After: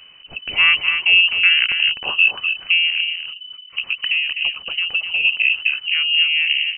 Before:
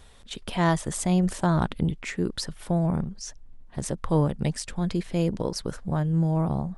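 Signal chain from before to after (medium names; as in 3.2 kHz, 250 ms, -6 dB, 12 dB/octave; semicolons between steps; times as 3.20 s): peaking EQ 370 Hz +14 dB 0.57 oct; 2.87–5.25 s: compression 6:1, threshold -22 dBFS, peak gain reduction 8.5 dB; delay 253 ms -7 dB; frequency inversion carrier 3 kHz; trim +4 dB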